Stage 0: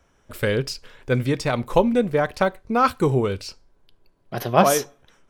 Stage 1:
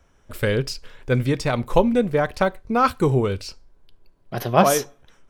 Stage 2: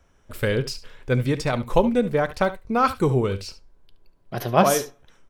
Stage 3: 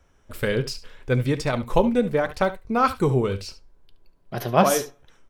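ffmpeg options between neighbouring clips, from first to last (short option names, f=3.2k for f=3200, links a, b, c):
-af "lowshelf=f=77:g=7"
-af "aecho=1:1:71:0.178,volume=-1.5dB"
-af "flanger=delay=2.2:depth=2.8:regen=-81:speed=0.8:shape=sinusoidal,volume=4dB"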